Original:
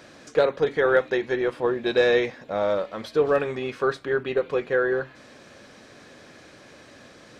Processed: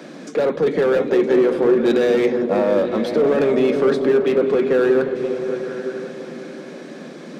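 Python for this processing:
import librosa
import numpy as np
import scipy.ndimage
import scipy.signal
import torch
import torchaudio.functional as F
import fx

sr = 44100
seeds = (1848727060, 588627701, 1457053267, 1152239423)

p1 = fx.small_body(x, sr, hz=(2200.0, 3500.0), ring_ms=45, db=6)
p2 = fx.over_compress(p1, sr, threshold_db=-25.0, ratio=-0.5)
p3 = p1 + (p2 * librosa.db_to_amplitude(0.0))
p4 = scipy.signal.sosfilt(scipy.signal.butter(12, 150.0, 'highpass', fs=sr, output='sos'), p3)
p5 = p4 + 10.0 ** (-16.0 / 20.0) * np.pad(p4, (int(965 * sr / 1000.0), 0))[:len(p4)]
p6 = np.clip(p5, -10.0 ** (-17.0 / 20.0), 10.0 ** (-17.0 / 20.0))
p7 = fx.peak_eq(p6, sr, hz=240.0, db=11.5, octaves=2.7)
p8 = p7 + fx.echo_opening(p7, sr, ms=178, hz=200, octaves=1, feedback_pct=70, wet_db=-3, dry=0)
y = p8 * librosa.db_to_amplitude(-4.0)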